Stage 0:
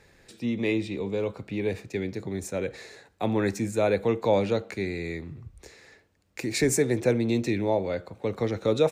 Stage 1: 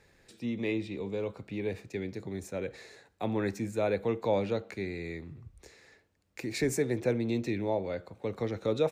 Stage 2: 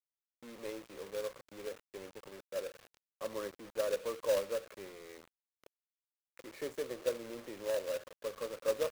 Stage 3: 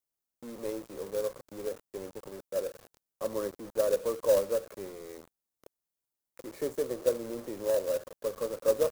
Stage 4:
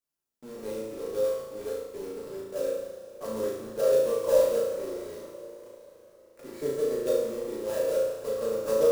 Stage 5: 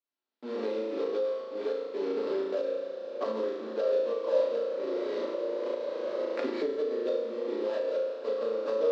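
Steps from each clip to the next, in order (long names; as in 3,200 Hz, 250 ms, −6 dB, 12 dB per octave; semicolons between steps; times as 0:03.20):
dynamic equaliser 8,400 Hz, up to −5 dB, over −50 dBFS, Q 0.8; level −5.5 dB
pair of resonant band-passes 790 Hz, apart 1 octave; log-companded quantiser 4 bits; level +1 dB
parametric band 2,500 Hz −11 dB 2.2 octaves; level +8.5 dB
high-shelf EQ 7,900 Hz −3.5 dB; flutter between parallel walls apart 6.2 metres, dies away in 0.76 s; coupled-rooms reverb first 0.32 s, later 4.4 s, from −18 dB, DRR −1.5 dB; level −4 dB
camcorder AGC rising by 23 dB per second; elliptic band-pass filter 250–4,200 Hz, stop band 50 dB; level −4 dB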